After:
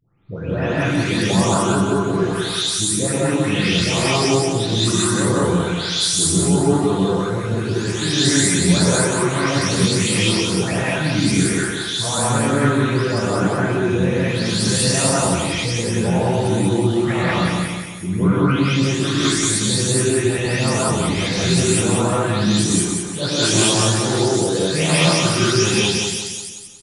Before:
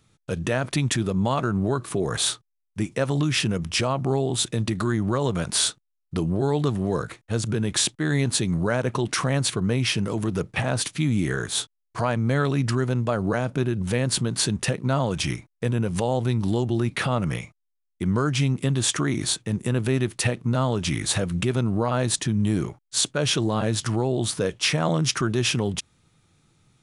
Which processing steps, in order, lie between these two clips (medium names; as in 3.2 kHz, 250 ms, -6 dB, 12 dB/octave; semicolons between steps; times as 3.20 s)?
delay that grows with frequency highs late, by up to 480 ms; feedback delay 180 ms, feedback 42%, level -4.5 dB; gated-style reverb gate 230 ms rising, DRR -7.5 dB; trim -1 dB